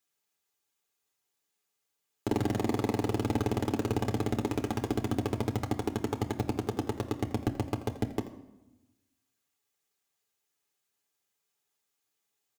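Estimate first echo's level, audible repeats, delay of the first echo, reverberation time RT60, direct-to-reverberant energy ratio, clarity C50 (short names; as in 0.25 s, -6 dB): -15.0 dB, 1, 84 ms, 0.95 s, 2.5 dB, 11.5 dB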